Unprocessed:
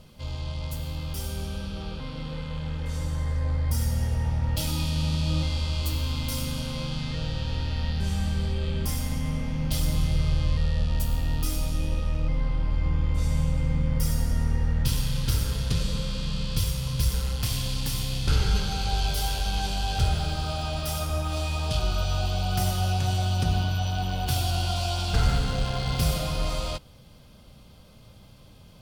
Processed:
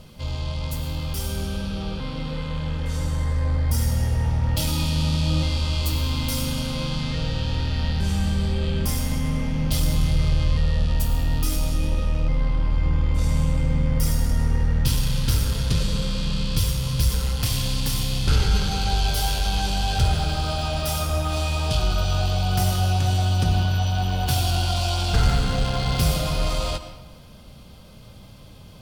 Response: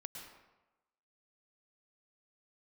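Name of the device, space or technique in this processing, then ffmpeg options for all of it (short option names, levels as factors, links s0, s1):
saturated reverb return: -filter_complex "[0:a]asplit=2[s0][s1];[1:a]atrim=start_sample=2205[s2];[s1][s2]afir=irnorm=-1:irlink=0,asoftclip=type=tanh:threshold=0.0282,volume=0.944[s3];[s0][s3]amix=inputs=2:normalize=0,volume=1.26"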